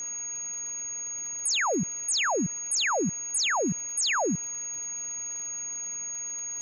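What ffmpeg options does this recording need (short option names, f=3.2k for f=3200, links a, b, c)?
-af "adeclick=t=4,bandreject=f=6.6k:w=30,afwtdn=0.005"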